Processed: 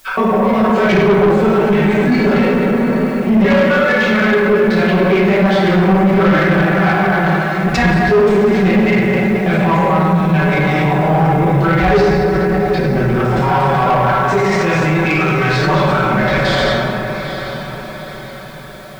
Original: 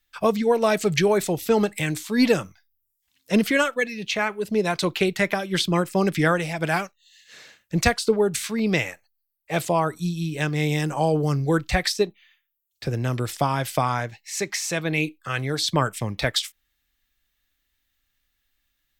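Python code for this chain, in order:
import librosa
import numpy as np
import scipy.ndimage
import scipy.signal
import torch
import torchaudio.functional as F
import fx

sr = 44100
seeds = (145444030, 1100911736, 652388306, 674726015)

p1 = fx.block_reorder(x, sr, ms=86.0, group=2)
p2 = scipy.signal.sosfilt(scipy.signal.butter(2, 2300.0, 'lowpass', fs=sr, output='sos'), p1)
p3 = fx.hum_notches(p2, sr, base_hz=50, count=3)
p4 = p3 + 0.94 * np.pad(p3, (int(5.3 * sr / 1000.0), 0))[:len(p3)]
p5 = fx.rev_plate(p4, sr, seeds[0], rt60_s=2.0, hf_ratio=0.55, predelay_ms=0, drr_db=-9.5)
p6 = fx.over_compress(p5, sr, threshold_db=-24.0, ratio=-1.0)
p7 = p5 + F.gain(torch.from_numpy(p6), -0.5).numpy()
p8 = fx.quant_dither(p7, sr, seeds[1], bits=8, dither='triangular')
p9 = p8 + fx.echo_diffused(p8, sr, ms=813, feedback_pct=49, wet_db=-11.5, dry=0)
y = 10.0 ** (-7.0 / 20.0) * np.tanh(p9 / 10.0 ** (-7.0 / 20.0))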